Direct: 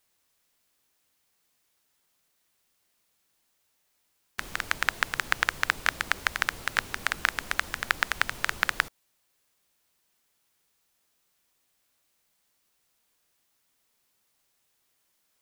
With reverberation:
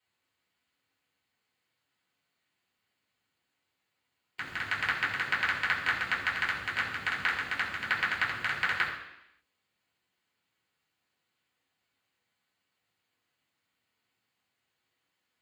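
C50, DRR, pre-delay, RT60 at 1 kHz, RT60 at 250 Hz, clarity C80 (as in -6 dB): 5.5 dB, -6.0 dB, 3 ms, 0.85 s, 0.85 s, 7.5 dB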